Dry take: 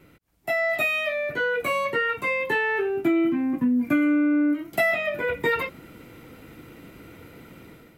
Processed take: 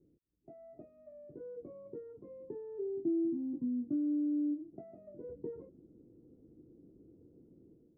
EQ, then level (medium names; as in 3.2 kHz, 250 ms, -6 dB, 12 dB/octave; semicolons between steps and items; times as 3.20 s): four-pole ladder low-pass 440 Hz, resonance 45%; -8.0 dB